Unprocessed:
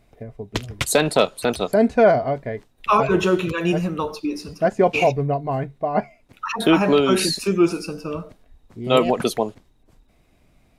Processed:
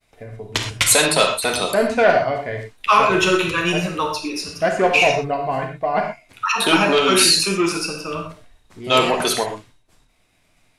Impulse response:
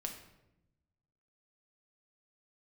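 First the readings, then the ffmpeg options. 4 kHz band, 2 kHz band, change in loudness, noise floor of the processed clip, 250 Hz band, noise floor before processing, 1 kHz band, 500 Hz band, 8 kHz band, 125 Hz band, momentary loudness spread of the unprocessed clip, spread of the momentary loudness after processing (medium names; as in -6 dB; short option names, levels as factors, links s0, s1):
+9.0 dB, +7.5 dB, +3.0 dB, -61 dBFS, -2.5 dB, -59 dBFS, +3.5 dB, 0.0 dB, +10.5 dB, -2.5 dB, 14 LU, 14 LU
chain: -filter_complex "[0:a]acontrast=85,tiltshelf=f=800:g=-7,agate=range=0.0224:threshold=0.00398:ratio=3:detection=peak[s0];[1:a]atrim=start_sample=2205,atrim=end_sample=3087,asetrate=22932,aresample=44100[s1];[s0][s1]afir=irnorm=-1:irlink=0,volume=0.531"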